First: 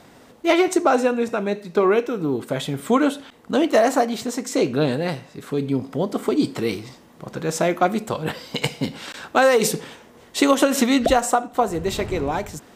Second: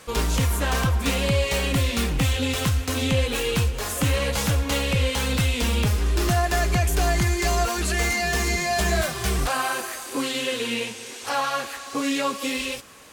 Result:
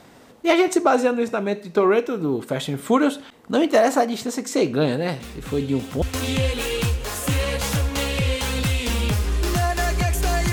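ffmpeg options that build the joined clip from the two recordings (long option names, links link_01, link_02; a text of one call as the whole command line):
ffmpeg -i cue0.wav -i cue1.wav -filter_complex "[1:a]asplit=2[link_01][link_02];[0:a]apad=whole_dur=10.52,atrim=end=10.52,atrim=end=6.022[link_03];[link_02]atrim=start=2.758:end=7.26[link_04];[link_01]atrim=start=1.94:end=2.76,asetpts=PTS-STARTPTS,volume=-14dB,afade=type=in:duration=0.004:curve=hsin,afade=type=out:start_time=0.816:duration=0.004:curve=hsin,adelay=5200[link_05];[link_03][link_04]acrossfade=duration=0.004:curve1=hsin:curve2=hsin[link_06];[link_06][link_05]amix=inputs=2:normalize=0" out.wav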